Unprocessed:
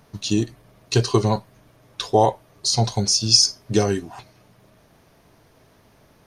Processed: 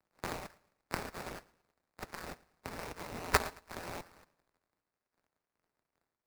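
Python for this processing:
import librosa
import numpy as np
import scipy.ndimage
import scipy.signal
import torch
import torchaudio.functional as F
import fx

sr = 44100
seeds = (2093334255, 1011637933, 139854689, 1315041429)

p1 = np.r_[np.sort(x[:len(x) // 256 * 256].reshape(-1, 256), axis=1).ravel(), x[len(x) // 256 * 256:]]
p2 = scipy.signal.sosfilt(scipy.signal.butter(4, 110.0, 'highpass', fs=sr, output='sos'), p1)
p3 = fx.env_lowpass_down(p2, sr, base_hz=2200.0, full_db=-18.0)
p4 = fx.chorus_voices(p3, sr, voices=6, hz=0.8, base_ms=27, depth_ms=2.3, mix_pct=40)
p5 = fx.dynamic_eq(p4, sr, hz=6000.0, q=0.85, threshold_db=-44.0, ratio=4.0, max_db=-3)
p6 = fx.level_steps(p5, sr, step_db=17)
p7 = fx.spec_gate(p6, sr, threshold_db=-25, keep='weak')
p8 = fx.env_phaser(p7, sr, low_hz=170.0, high_hz=2800.0, full_db=-45.5)
p9 = fx.sample_hold(p8, sr, seeds[0], rate_hz=3200.0, jitter_pct=20)
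p10 = p9 + fx.echo_feedback(p9, sr, ms=111, feedback_pct=50, wet_db=-20.5, dry=0)
p11 = fx.band_widen(p10, sr, depth_pct=70)
y = F.gain(torch.from_numpy(p11), 13.0).numpy()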